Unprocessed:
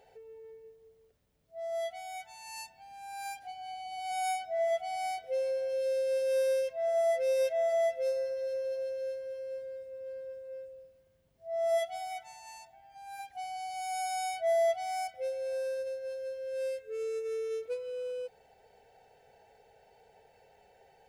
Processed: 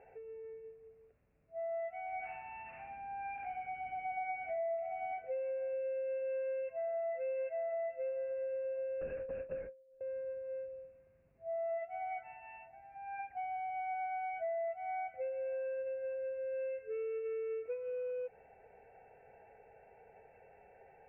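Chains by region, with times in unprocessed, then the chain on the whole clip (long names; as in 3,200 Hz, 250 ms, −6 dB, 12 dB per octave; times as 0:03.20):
0:02.06–0:05.13: spike at every zero crossing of −31 dBFS + tilt shelving filter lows +5.5 dB, about 720 Hz + flutter between parallel walls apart 11.6 metres, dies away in 0.89 s
0:09.01–0:10.01: noise gate with hold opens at −35 dBFS, closes at −36 dBFS + linear-prediction vocoder at 8 kHz whisper
whole clip: Chebyshev low-pass filter 2,700 Hz, order 8; notch filter 900 Hz, Q 28; downward compressor 5 to 1, threshold −39 dBFS; level +2 dB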